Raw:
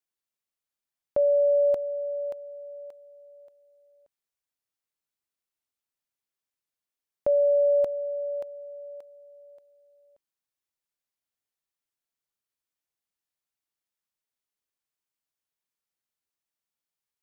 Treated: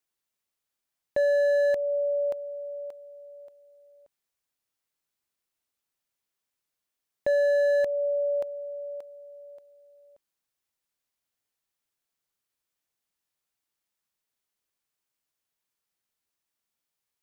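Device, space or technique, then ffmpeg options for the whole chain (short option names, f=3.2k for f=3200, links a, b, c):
limiter into clipper: -af "alimiter=limit=-21dB:level=0:latency=1:release=204,asoftclip=type=hard:threshold=-25dB,volume=4.5dB"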